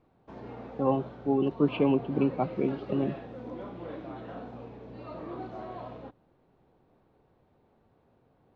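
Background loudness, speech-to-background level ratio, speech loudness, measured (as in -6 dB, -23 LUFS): -42.0 LUFS, 13.0 dB, -29.0 LUFS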